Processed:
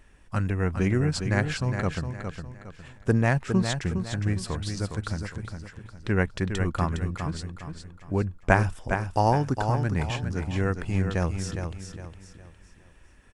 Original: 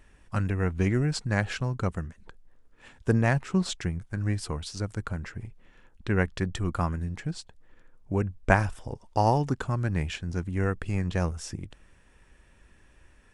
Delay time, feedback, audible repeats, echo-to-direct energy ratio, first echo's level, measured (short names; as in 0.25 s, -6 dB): 0.41 s, 36%, 4, -6.5 dB, -7.0 dB